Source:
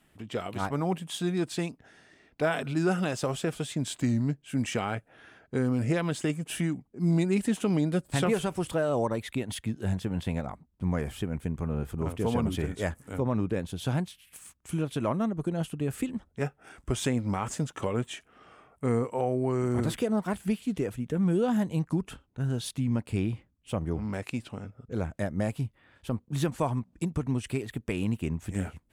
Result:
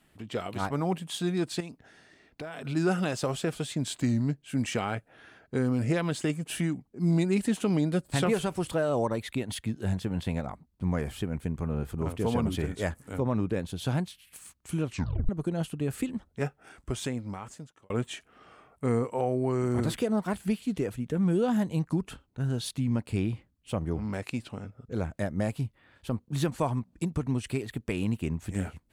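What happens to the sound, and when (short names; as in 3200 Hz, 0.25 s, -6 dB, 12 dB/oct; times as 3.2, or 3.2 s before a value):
1.6–2.65 compressor 10:1, threshold -35 dBFS
14.83 tape stop 0.46 s
16.47–17.9 fade out
whole clip: bell 4300 Hz +4 dB 0.24 oct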